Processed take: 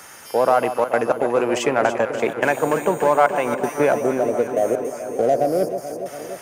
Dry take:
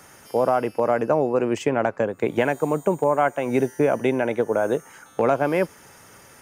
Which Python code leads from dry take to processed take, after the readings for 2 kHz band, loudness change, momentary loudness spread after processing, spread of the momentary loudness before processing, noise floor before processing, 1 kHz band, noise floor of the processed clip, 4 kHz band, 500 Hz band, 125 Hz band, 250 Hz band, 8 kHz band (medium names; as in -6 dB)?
+4.0 dB, +2.5 dB, 7 LU, 4 LU, -50 dBFS, +4.5 dB, -40 dBFS, +6.0 dB, +2.5 dB, -3.0 dB, -0.5 dB, +8.0 dB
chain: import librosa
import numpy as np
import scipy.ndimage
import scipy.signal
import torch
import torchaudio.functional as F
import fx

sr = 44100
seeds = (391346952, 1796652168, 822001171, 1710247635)

p1 = fx.step_gate(x, sr, bpm=161, pattern='xxxxxxxxx.xx.', floor_db=-24.0, edge_ms=4.5)
p2 = fx.spec_erase(p1, sr, start_s=3.93, length_s=2.11, low_hz=790.0, high_hz=4200.0)
p3 = np.clip(10.0 ** (23.5 / 20.0) * p2, -1.0, 1.0) / 10.0 ** (23.5 / 20.0)
p4 = p2 + (p3 * librosa.db_to_amplitude(-11.0))
p5 = fx.low_shelf(p4, sr, hz=430.0, db=-11.5)
p6 = p5 + fx.echo_alternate(p5, sr, ms=144, hz=1000.0, feedback_pct=84, wet_db=-9.0, dry=0)
y = p6 * librosa.db_to_amplitude(6.0)